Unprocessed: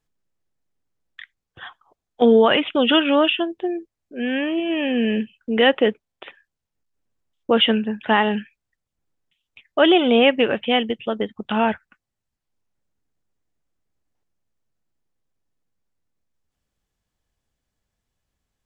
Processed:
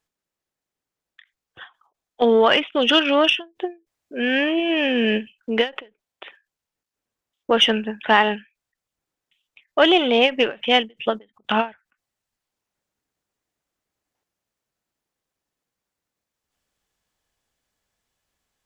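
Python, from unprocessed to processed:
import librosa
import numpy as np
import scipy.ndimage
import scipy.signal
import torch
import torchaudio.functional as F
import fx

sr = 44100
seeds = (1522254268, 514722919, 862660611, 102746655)

p1 = fx.diode_clip(x, sr, knee_db=-6.5)
p2 = fx.low_shelf(p1, sr, hz=270.0, db=-12.0)
p3 = fx.rider(p2, sr, range_db=10, speed_s=0.5)
p4 = p2 + F.gain(torch.from_numpy(p3), -2.0).numpy()
p5 = fx.end_taper(p4, sr, db_per_s=250.0)
y = F.gain(torch.from_numpy(p5), -1.0).numpy()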